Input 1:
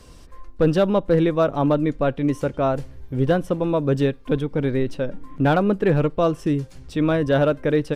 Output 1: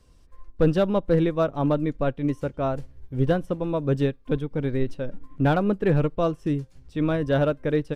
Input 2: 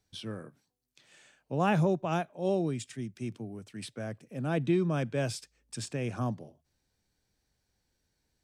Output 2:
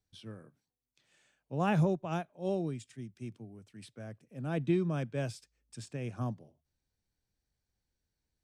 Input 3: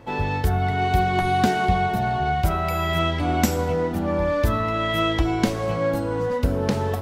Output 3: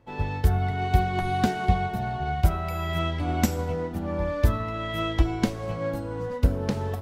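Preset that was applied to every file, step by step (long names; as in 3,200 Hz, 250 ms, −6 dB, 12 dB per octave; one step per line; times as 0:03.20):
low-shelf EQ 130 Hz +6.5 dB
expander for the loud parts 1.5 to 1, over −37 dBFS
level −2.5 dB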